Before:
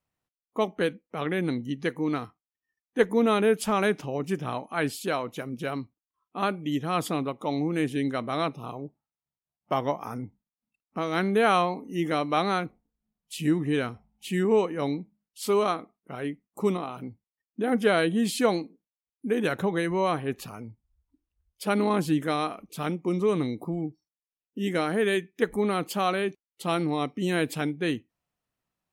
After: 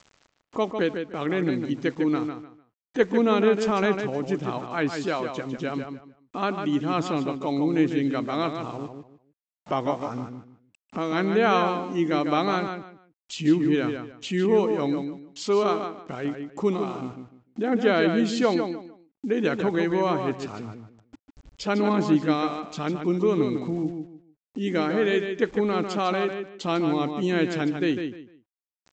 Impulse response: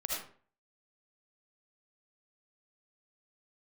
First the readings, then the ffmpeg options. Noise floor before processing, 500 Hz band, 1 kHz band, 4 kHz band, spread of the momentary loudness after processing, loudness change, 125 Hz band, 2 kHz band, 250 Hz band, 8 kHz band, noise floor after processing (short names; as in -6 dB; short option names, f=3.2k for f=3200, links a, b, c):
under -85 dBFS, +2.5 dB, +1.0 dB, +1.0 dB, 14 LU, +2.5 dB, +1.5 dB, +1.0 dB, +4.0 dB, -3.5 dB, under -85 dBFS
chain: -filter_complex "[0:a]adynamicequalizer=threshold=0.01:dfrequency=320:dqfactor=2.7:tfrequency=320:tqfactor=2.7:attack=5:release=100:ratio=0.375:range=2.5:mode=boostabove:tftype=bell,acompressor=mode=upward:threshold=-28dB:ratio=2.5,aresample=16000,aeval=exprs='val(0)*gte(abs(val(0)),0.00473)':c=same,aresample=44100,asplit=2[a][b];[b]adelay=150,lowpass=f=4.2k:p=1,volume=-6.5dB,asplit=2[c][d];[d]adelay=150,lowpass=f=4.2k:p=1,volume=0.25,asplit=2[e][f];[f]adelay=150,lowpass=f=4.2k:p=1,volume=0.25[g];[a][c][e][g]amix=inputs=4:normalize=0"